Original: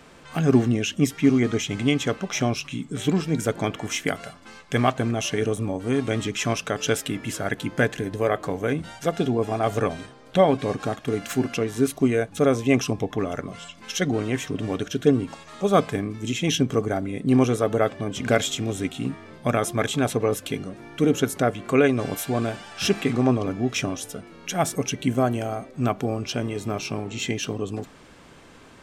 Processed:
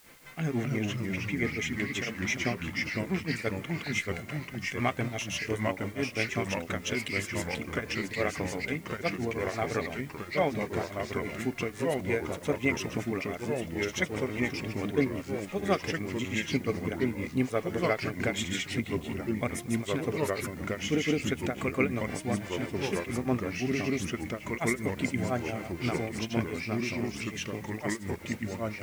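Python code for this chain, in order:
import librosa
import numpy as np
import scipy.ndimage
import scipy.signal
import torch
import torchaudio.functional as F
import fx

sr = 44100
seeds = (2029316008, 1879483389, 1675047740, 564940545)

y = fx.granulator(x, sr, seeds[0], grain_ms=207.0, per_s=5.9, spray_ms=100.0, spread_st=0)
y = fx.echo_pitch(y, sr, ms=206, semitones=-2, count=3, db_per_echo=-3.0)
y = fx.peak_eq(y, sr, hz=2100.0, db=12.5, octaves=0.38)
y = fx.dmg_noise_colour(y, sr, seeds[1], colour='white', level_db=-52.0)
y = F.gain(torch.from_numpy(y), -7.0).numpy()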